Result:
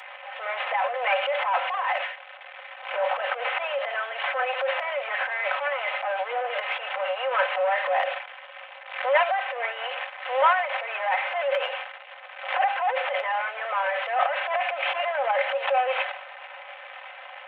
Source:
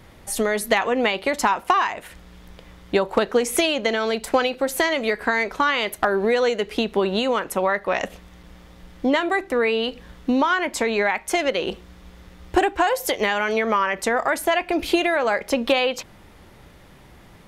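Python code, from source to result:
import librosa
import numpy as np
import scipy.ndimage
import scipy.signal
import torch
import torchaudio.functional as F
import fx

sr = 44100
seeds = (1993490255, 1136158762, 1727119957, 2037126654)

y = fx.delta_mod(x, sr, bps=16000, step_db=-33.0)
y = y + 0.59 * np.pad(y, (int(3.9 * sr / 1000.0), 0))[:len(y)]
y = fx.transient(y, sr, attack_db=-6, sustain_db=11)
y = scipy.signal.sosfilt(scipy.signal.cheby1(6, 3, 540.0, 'highpass', fs=sr, output='sos'), y)
y = fx.pre_swell(y, sr, db_per_s=89.0)
y = y * librosa.db_to_amplitude(1.0)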